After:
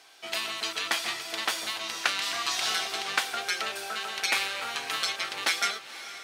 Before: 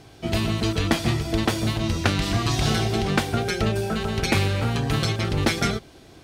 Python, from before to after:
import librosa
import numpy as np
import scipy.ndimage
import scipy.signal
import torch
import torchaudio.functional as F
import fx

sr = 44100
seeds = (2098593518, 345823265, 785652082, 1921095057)

y = scipy.signal.sosfilt(scipy.signal.butter(2, 1100.0, 'highpass', fs=sr, output='sos'), x)
y = fx.echo_diffused(y, sr, ms=511, feedback_pct=49, wet_db=-14.0)